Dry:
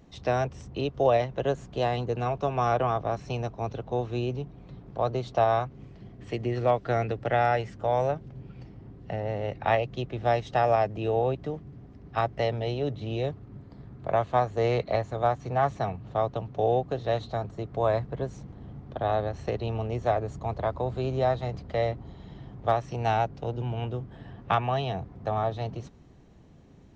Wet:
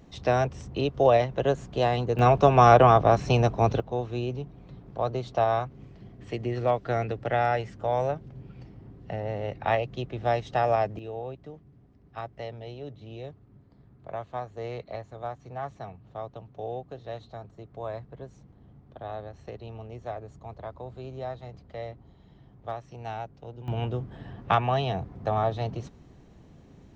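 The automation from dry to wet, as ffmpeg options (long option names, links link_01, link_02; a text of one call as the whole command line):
ffmpeg -i in.wav -af "asetnsamples=nb_out_samples=441:pad=0,asendcmd='2.19 volume volume 9.5dB;3.8 volume volume -1dB;10.99 volume volume -10.5dB;23.68 volume volume 2dB',volume=2.5dB" out.wav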